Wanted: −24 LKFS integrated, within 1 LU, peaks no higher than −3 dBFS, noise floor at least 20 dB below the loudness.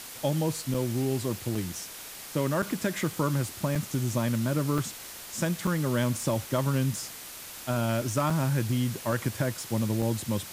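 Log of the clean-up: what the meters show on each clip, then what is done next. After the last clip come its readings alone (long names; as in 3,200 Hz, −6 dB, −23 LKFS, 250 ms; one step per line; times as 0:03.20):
number of dropouts 8; longest dropout 4.5 ms; background noise floor −43 dBFS; target noise floor −49 dBFS; integrated loudness −29.0 LKFS; sample peak −14.0 dBFS; target loudness −24.0 LKFS
→ repair the gap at 0:00.74/0:01.55/0:02.62/0:03.75/0:04.78/0:05.67/0:08.30/0:10.02, 4.5 ms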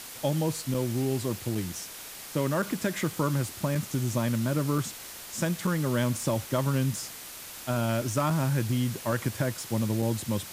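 number of dropouts 0; background noise floor −43 dBFS; target noise floor −49 dBFS
→ broadband denoise 6 dB, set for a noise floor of −43 dBFS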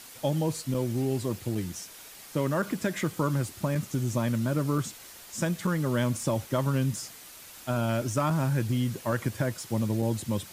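background noise floor −48 dBFS; target noise floor −50 dBFS
→ broadband denoise 6 dB, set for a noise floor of −48 dBFS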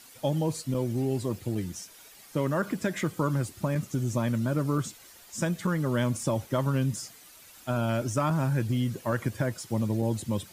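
background noise floor −52 dBFS; integrated loudness −29.5 LKFS; sample peak −14.5 dBFS; target loudness −24.0 LKFS
→ level +5.5 dB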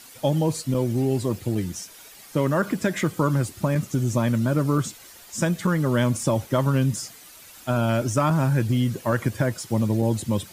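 integrated loudness −24.0 LKFS; sample peak −9.0 dBFS; background noise floor −47 dBFS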